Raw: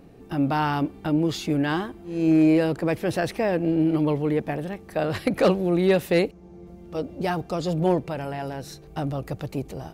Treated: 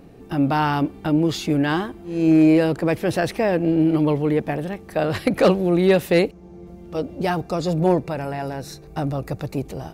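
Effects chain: 7.41–9.58 s: band-stop 3.1 kHz, Q 6.4; trim +3.5 dB

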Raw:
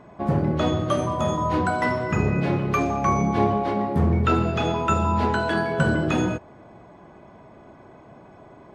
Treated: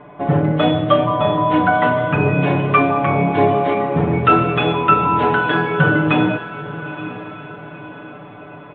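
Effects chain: steep low-pass 3.6 kHz 72 dB/octave; bass shelf 210 Hz -6.5 dB; comb 6.8 ms, depth 95%; echo that smears into a reverb 939 ms, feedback 46%, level -13.5 dB; trim +5.5 dB

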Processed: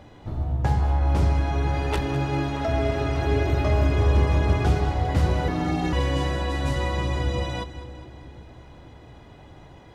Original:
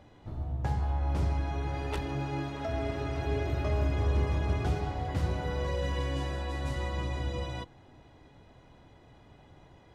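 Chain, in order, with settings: 5.48–5.93 s: ring modulator 240 Hz; two-band feedback delay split 430 Hz, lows 505 ms, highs 203 ms, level -14 dB; trim +8.5 dB

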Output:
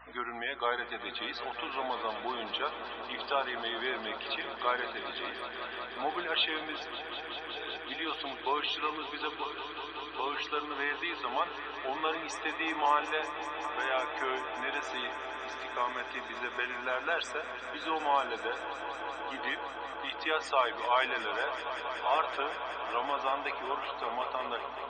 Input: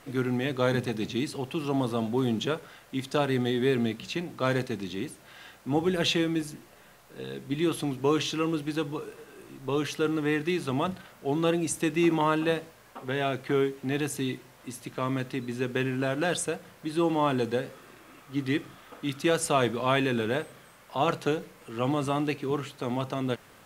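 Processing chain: Chebyshev band-pass 900–4700 Hz, order 2; treble shelf 3.7 kHz -6.5 dB; in parallel at 0 dB: compression, threshold -41 dBFS, peak gain reduction 16.5 dB; on the sum: tape speed -5%; loudest bins only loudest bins 64; hum 60 Hz, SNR 28 dB; on a send: echo with a slow build-up 188 ms, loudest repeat 5, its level -14 dB

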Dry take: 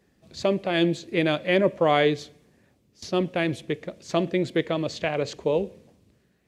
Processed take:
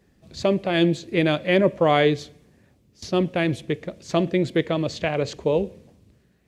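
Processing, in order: bass shelf 140 Hz +7.5 dB; trim +1.5 dB

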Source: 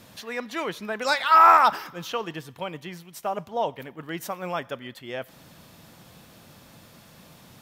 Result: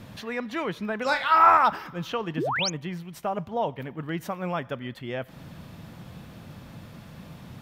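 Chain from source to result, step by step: tone controls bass +8 dB, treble -9 dB; in parallel at 0 dB: compression, threshold -36 dBFS, peak gain reduction 22.5 dB; 1.03–1.51 s: on the sum: flutter echo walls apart 5.4 m, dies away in 0.24 s; 2.37–2.70 s: painted sound rise 220–7000 Hz -24 dBFS; trim -3 dB

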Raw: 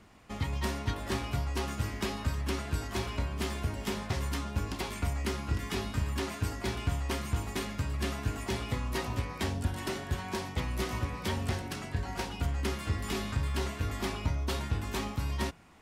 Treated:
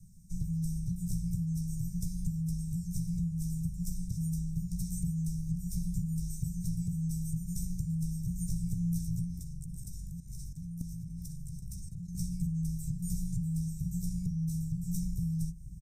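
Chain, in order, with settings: elliptic band-stop 320–6900 Hz, stop band 40 dB; high-order bell 980 Hz -12 dB 1.3 oct; doubling 14 ms -6 dB; feedback echo behind a band-pass 1177 ms, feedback 42%, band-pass 430 Hz, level -7 dB; compression 10:1, threshold -35 dBFS, peak gain reduction 12 dB; frequency shift -230 Hz; rippled EQ curve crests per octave 1.6, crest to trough 9 dB; 9.39–12.15 s: level held to a coarse grid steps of 11 dB; trim +4 dB

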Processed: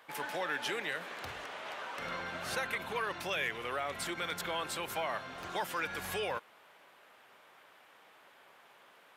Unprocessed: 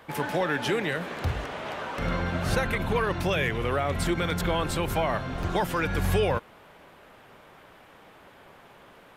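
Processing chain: high-pass 1 kHz 6 dB/octave; trim -4.5 dB

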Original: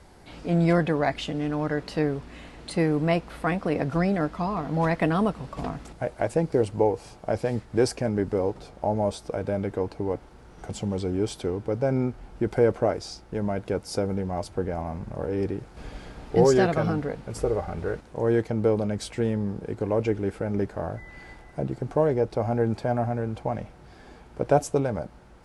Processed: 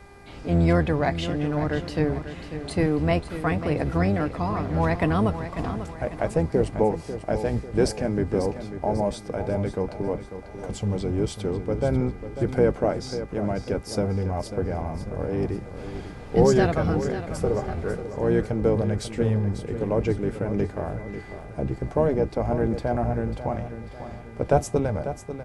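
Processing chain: octave divider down 1 oct, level -2 dB; mains buzz 400 Hz, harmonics 6, -52 dBFS -3 dB/octave; feedback delay 544 ms, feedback 45%, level -11 dB

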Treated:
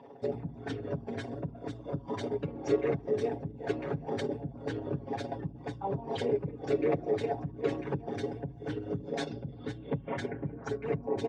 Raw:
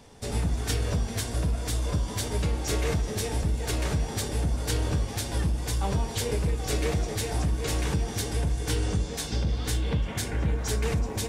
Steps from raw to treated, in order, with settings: resonances exaggerated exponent 2; band-pass 330–2300 Hz; comb 7.3 ms, depth 61%; trim +6 dB

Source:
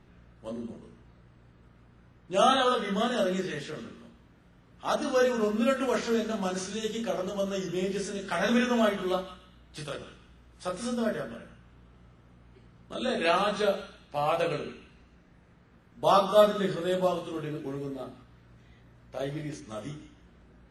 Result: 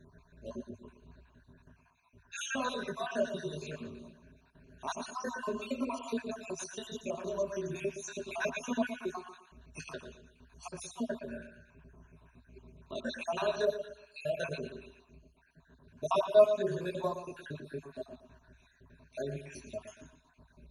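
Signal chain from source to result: random holes in the spectrogram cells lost 60%; rippled EQ curve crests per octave 1.5, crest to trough 15 dB; in parallel at +2 dB: compression, threshold -39 dBFS, peak gain reduction 27.5 dB; on the sum: filtered feedback delay 117 ms, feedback 33%, low-pass 4.8 kHz, level -10 dB; trim -9 dB

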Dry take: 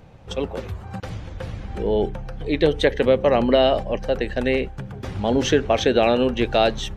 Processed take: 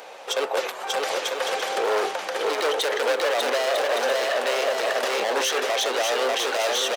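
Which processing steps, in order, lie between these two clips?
in parallel at +1 dB: compression, threshold -29 dBFS, peak gain reduction 16 dB; on the sum: overload inside the chain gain 20.5 dB; high-pass 490 Hz 24 dB/octave; treble shelf 3.6 kHz +6.5 dB; on a send: bouncing-ball echo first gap 590 ms, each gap 0.6×, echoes 5; on the sum: peak limiter -21 dBFS, peak gain reduction 11.5 dB; trim +6.5 dB

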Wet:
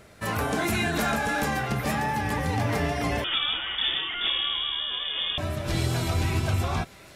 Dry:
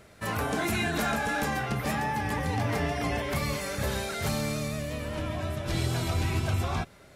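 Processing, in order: thinning echo 702 ms, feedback 77%, high-pass 990 Hz, level -19.5 dB; 3.24–5.38 s: frequency inversion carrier 3.5 kHz; trim +2.5 dB

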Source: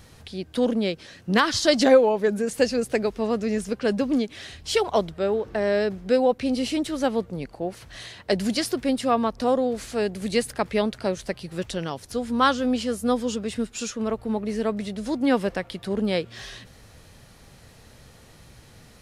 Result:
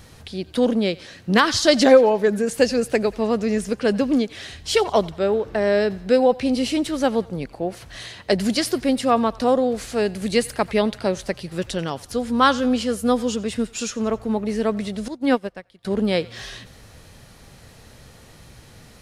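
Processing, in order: on a send: thinning echo 89 ms, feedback 54%, high-pass 660 Hz, level -20.5 dB; 15.08–15.85 s: on the sum: upward expansion 2.5:1, over -33 dBFS; trim +3.5 dB

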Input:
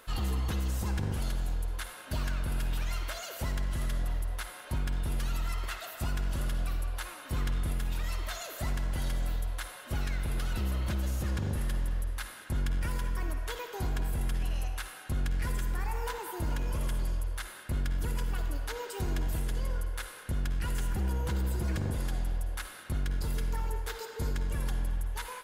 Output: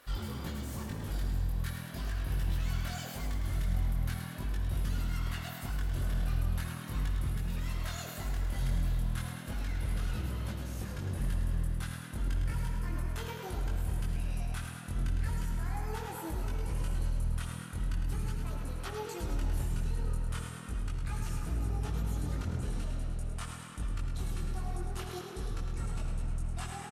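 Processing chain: gliding tape speed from 110% -> 79%; peak limiter -26.5 dBFS, peak gain reduction 4 dB; chorus voices 2, 0.4 Hz, delay 21 ms, depth 3.1 ms; frequency-shifting echo 106 ms, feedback 58%, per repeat +41 Hz, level -7.5 dB

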